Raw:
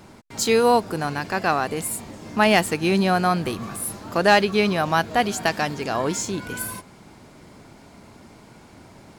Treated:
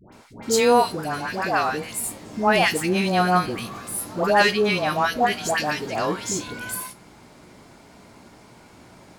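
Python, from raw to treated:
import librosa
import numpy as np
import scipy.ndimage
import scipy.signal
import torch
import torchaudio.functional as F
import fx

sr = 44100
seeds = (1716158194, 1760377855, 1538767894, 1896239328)

y = fx.low_shelf(x, sr, hz=320.0, db=-4.0)
y = fx.comb_fb(y, sr, f0_hz=60.0, decay_s=0.23, harmonics='all', damping=0.0, mix_pct=60)
y = fx.dispersion(y, sr, late='highs', ms=125.0, hz=960.0)
y = y * 10.0 ** (4.0 / 20.0)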